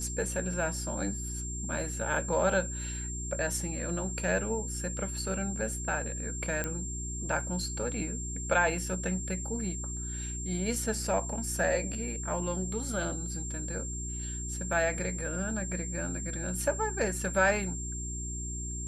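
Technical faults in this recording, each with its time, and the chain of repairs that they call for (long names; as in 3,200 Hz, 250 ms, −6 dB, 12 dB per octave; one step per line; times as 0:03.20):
mains hum 60 Hz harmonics 6 −38 dBFS
whistle 7,400 Hz −38 dBFS
0:06.64: click −17 dBFS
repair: click removal
notch filter 7,400 Hz, Q 30
hum removal 60 Hz, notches 6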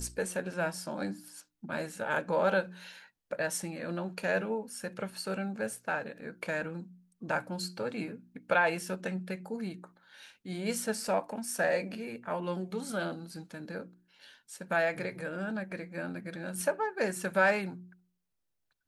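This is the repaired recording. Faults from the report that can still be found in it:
none of them is left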